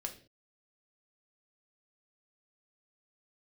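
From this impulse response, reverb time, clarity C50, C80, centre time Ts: not exponential, 11.5 dB, 16.0 dB, 11 ms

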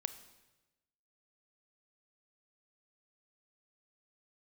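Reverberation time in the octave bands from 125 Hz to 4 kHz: 1.2, 1.2, 1.1, 1.0, 1.0, 1.0 s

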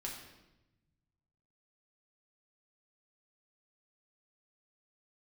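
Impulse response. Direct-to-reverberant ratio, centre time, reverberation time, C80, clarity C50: -2.0 dB, 44 ms, 0.95 s, 6.5 dB, 4.0 dB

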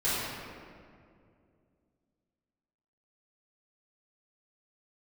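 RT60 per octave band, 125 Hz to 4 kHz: 3.1, 3.0, 2.6, 2.0, 1.8, 1.2 s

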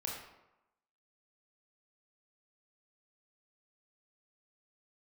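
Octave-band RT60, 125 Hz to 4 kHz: 0.85, 0.85, 0.90, 0.95, 0.75, 0.55 s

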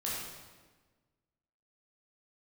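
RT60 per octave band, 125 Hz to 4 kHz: 1.7, 1.7, 1.4, 1.3, 1.2, 1.1 s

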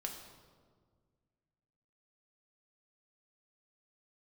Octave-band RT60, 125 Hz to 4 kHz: 2.5, 2.3, 1.9, 1.6, 1.1, 1.0 s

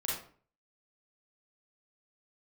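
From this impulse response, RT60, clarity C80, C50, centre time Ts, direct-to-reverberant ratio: 0.45 s, 7.0 dB, 1.0 dB, 50 ms, -5.5 dB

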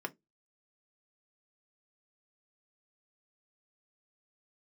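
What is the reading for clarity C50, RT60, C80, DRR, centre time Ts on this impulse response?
26.5 dB, 0.20 s, 37.5 dB, 4.0 dB, 4 ms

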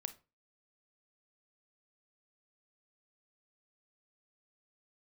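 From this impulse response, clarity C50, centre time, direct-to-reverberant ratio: 15.5 dB, 5 ms, 11.0 dB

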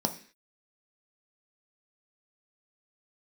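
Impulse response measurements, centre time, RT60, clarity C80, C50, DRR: 9 ms, 0.45 s, 17.5 dB, 13.0 dB, 4.5 dB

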